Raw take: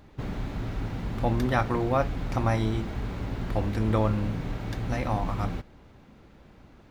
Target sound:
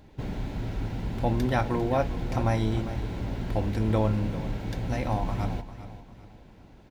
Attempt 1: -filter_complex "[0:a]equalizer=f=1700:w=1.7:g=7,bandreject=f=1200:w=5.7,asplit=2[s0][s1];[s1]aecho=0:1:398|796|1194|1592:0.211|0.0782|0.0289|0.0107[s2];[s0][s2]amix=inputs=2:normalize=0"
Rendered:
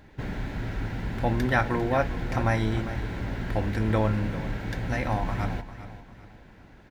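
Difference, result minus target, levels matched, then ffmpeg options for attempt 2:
2 kHz band +7.0 dB
-filter_complex "[0:a]equalizer=f=1700:w=1.7:g=-2.5,bandreject=f=1200:w=5.7,asplit=2[s0][s1];[s1]aecho=0:1:398|796|1194|1592:0.211|0.0782|0.0289|0.0107[s2];[s0][s2]amix=inputs=2:normalize=0"

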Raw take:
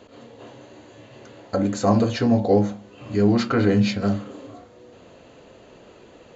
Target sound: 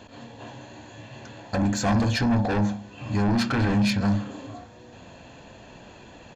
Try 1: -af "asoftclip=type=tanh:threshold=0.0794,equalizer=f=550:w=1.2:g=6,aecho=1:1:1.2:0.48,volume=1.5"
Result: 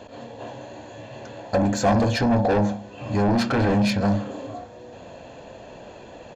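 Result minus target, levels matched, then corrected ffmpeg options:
500 Hz band +6.0 dB
-af "asoftclip=type=tanh:threshold=0.0794,equalizer=f=550:w=1.2:g=-3.5,aecho=1:1:1.2:0.48,volume=1.5"

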